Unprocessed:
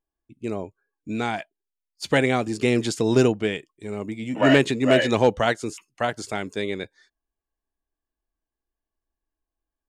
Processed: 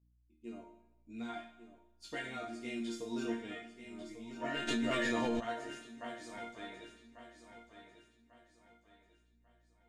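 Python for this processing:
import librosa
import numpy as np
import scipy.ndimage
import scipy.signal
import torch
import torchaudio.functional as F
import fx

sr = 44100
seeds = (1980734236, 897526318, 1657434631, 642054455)

p1 = fx.resonator_bank(x, sr, root=58, chord='sus4', decay_s=0.41)
p2 = fx.add_hum(p1, sr, base_hz=60, snr_db=29)
p3 = fx.chorus_voices(p2, sr, voices=2, hz=0.42, base_ms=17, depth_ms=3.5, mix_pct=40)
p4 = p3 + fx.echo_feedback(p3, sr, ms=1144, feedback_pct=36, wet_db=-10.5, dry=0)
p5 = fx.rev_schroeder(p4, sr, rt60_s=1.0, comb_ms=27, drr_db=10.5)
p6 = fx.env_flatten(p5, sr, amount_pct=100, at=(4.67, 5.39), fade=0.02)
y = F.gain(torch.from_numpy(p6), 3.0).numpy()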